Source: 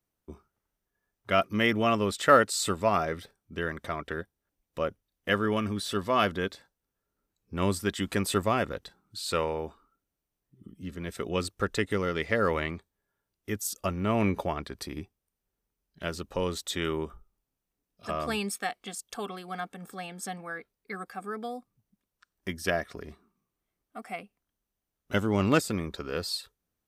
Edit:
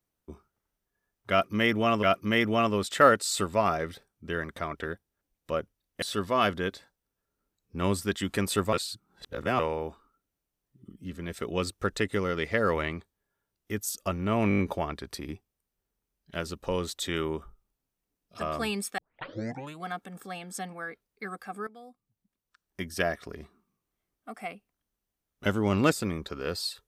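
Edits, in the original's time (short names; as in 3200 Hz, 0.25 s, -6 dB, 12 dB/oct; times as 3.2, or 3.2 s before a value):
1.31–2.03 loop, 2 plays
5.3–5.8 cut
8.51–9.37 reverse
14.27 stutter 0.02 s, 6 plays
18.66 tape start 0.87 s
21.35–22.69 fade in, from -16 dB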